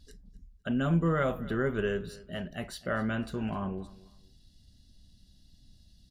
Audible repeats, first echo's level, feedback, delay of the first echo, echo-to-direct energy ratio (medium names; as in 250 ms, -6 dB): 2, -20.0 dB, 27%, 254 ms, -19.5 dB